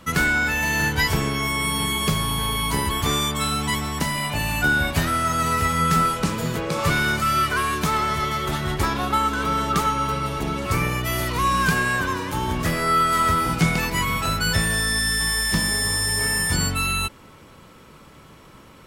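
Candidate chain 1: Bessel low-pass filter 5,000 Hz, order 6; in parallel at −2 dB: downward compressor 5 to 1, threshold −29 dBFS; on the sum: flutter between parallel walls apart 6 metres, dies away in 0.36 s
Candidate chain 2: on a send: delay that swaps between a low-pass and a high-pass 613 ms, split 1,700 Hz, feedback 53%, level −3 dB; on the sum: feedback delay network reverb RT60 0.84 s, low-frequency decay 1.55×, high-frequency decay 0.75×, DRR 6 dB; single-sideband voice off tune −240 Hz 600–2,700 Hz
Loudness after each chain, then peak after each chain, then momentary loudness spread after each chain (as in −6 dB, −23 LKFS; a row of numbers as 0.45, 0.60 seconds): −19.5, −21.5 LKFS; −4.0, −7.0 dBFS; 5, 8 LU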